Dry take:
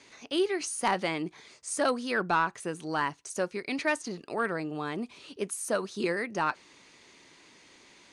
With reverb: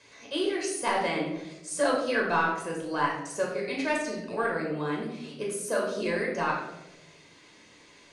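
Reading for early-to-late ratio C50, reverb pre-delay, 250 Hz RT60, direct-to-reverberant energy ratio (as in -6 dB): 4.0 dB, 9 ms, 1.3 s, -2.0 dB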